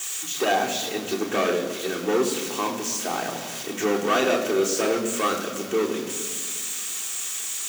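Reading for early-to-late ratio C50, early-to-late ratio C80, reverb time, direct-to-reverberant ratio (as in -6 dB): 8.5 dB, 9.5 dB, 1.7 s, -2.0 dB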